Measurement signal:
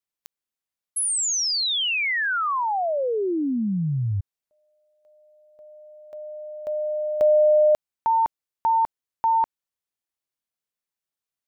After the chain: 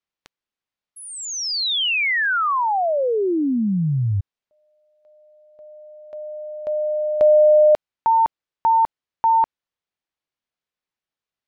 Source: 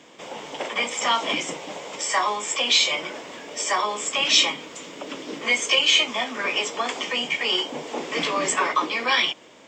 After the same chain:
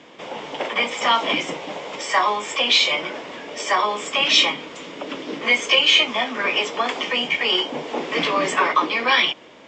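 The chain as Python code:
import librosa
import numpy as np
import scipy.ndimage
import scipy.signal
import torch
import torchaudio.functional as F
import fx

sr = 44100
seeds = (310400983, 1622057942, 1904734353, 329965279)

y = scipy.signal.sosfilt(scipy.signal.butter(2, 4300.0, 'lowpass', fs=sr, output='sos'), x)
y = y * 10.0 ** (4.0 / 20.0)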